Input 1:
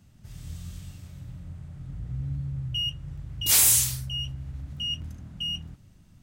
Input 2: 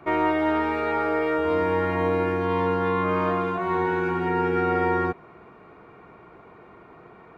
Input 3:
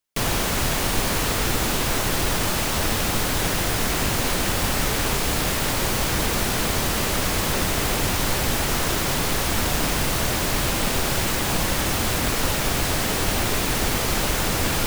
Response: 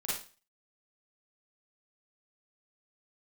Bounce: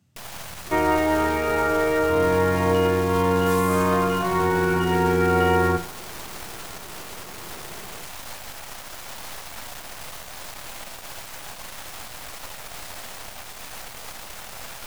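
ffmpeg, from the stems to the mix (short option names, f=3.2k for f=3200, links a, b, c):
-filter_complex "[0:a]highpass=f=93:w=0.5412,highpass=f=93:w=1.3066,acompressor=threshold=-32dB:ratio=6,volume=-5.5dB[a];[1:a]lowshelf=f=160:g=6,adelay=650,volume=1dB,asplit=2[b][c];[c]volume=-12.5dB[d];[2:a]lowshelf=f=500:t=q:w=1.5:g=-8.5,alimiter=limit=-15.5dB:level=0:latency=1:release=493,aeval=exprs='max(val(0),0)':c=same,volume=-7dB[e];[3:a]atrim=start_sample=2205[f];[d][f]afir=irnorm=-1:irlink=0[g];[a][b][e][g]amix=inputs=4:normalize=0"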